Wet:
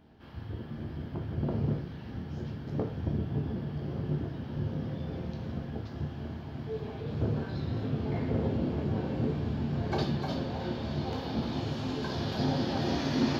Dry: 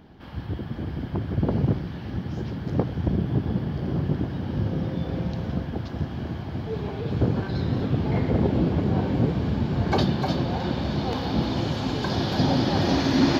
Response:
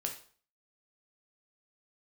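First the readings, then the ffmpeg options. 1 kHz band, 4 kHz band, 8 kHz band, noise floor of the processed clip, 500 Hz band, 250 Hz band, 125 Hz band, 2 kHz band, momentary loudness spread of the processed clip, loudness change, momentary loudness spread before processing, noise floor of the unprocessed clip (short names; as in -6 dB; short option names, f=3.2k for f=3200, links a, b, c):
-8.5 dB, -8.5 dB, n/a, -42 dBFS, -7.0 dB, -8.0 dB, -7.5 dB, -8.0 dB, 9 LU, -7.5 dB, 9 LU, -36 dBFS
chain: -filter_complex "[1:a]atrim=start_sample=2205[a];[0:a][a]afir=irnorm=-1:irlink=0,volume=-9dB"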